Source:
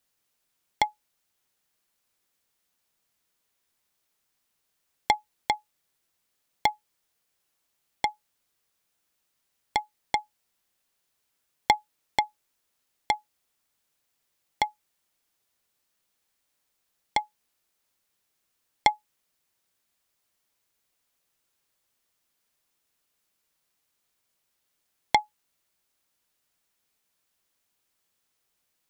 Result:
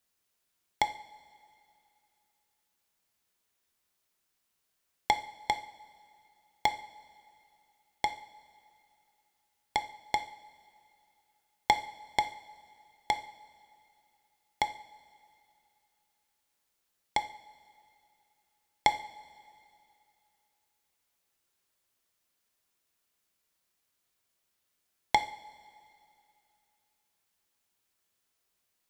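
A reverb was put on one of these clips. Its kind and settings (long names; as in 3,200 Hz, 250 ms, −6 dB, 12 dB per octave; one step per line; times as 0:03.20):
coupled-rooms reverb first 0.5 s, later 2.7 s, from −17 dB, DRR 8 dB
level −3 dB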